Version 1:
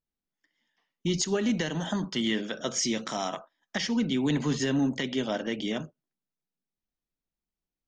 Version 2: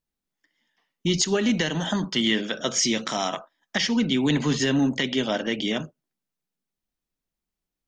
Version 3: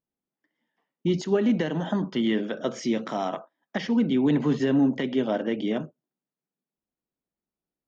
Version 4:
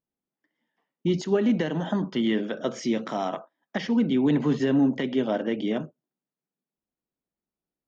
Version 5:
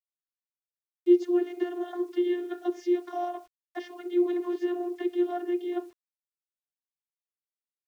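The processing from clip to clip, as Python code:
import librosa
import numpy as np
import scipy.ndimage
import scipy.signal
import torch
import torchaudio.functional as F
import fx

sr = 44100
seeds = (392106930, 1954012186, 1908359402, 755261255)

y1 = fx.dynamic_eq(x, sr, hz=3000.0, q=0.7, threshold_db=-44.0, ratio=4.0, max_db=4)
y1 = y1 * librosa.db_to_amplitude(4.0)
y2 = fx.bandpass_q(y1, sr, hz=370.0, q=0.55)
y2 = y2 * librosa.db_to_amplitude(1.5)
y3 = y2
y4 = fx.vocoder(y3, sr, bands=32, carrier='saw', carrier_hz=353.0)
y4 = fx.quant_dither(y4, sr, seeds[0], bits=10, dither='none')
y4 = y4 * librosa.db_to_amplitude(-2.5)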